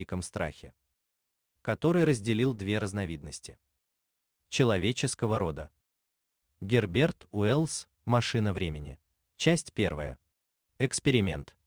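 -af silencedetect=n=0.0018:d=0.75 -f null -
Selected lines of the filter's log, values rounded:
silence_start: 0.70
silence_end: 1.65 | silence_duration: 0.95
silence_start: 3.56
silence_end: 4.51 | silence_duration: 0.96
silence_start: 5.68
silence_end: 6.62 | silence_duration: 0.94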